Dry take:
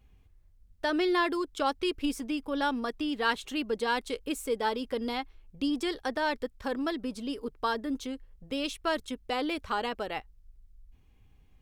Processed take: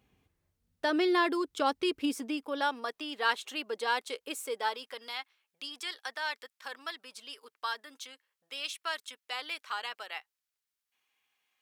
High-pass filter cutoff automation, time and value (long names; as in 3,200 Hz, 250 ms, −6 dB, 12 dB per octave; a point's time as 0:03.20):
0:01.98 150 Hz
0:02.74 550 Hz
0:04.45 550 Hz
0:05.13 1,300 Hz